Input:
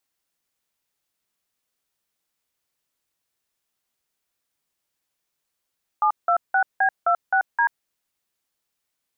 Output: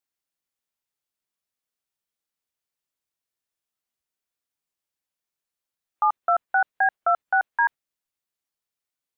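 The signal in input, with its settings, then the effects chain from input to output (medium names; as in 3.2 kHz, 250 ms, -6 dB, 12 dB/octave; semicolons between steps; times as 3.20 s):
DTMF "726B26D", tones 86 ms, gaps 175 ms, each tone -18.5 dBFS
spectral noise reduction 9 dB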